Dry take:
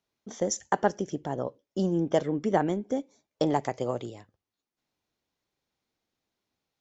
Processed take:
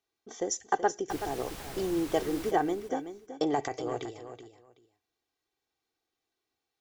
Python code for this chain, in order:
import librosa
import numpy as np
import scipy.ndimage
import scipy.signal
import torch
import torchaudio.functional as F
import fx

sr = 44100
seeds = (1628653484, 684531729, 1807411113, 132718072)

y = fx.low_shelf(x, sr, hz=180.0, db=-7.5)
y = y + 0.63 * np.pad(y, (int(2.6 * sr / 1000.0), 0))[:len(y)]
y = fx.dmg_noise_colour(y, sr, seeds[0], colour='pink', level_db=-40.0, at=(1.09, 2.5), fade=0.02)
y = fx.transient(y, sr, attack_db=-11, sustain_db=6, at=(3.53, 4.11))
y = fx.echo_feedback(y, sr, ms=377, feedback_pct=18, wet_db=-10.5)
y = y * librosa.db_to_amplitude(-3.0)